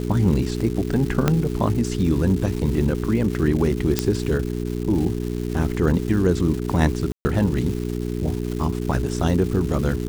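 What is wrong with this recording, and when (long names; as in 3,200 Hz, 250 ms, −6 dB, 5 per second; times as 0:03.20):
surface crackle 460 per second −29 dBFS
mains hum 60 Hz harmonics 7 −26 dBFS
0:01.28: click −4 dBFS
0:03.99: click −3 dBFS
0:07.12–0:07.25: drop-out 130 ms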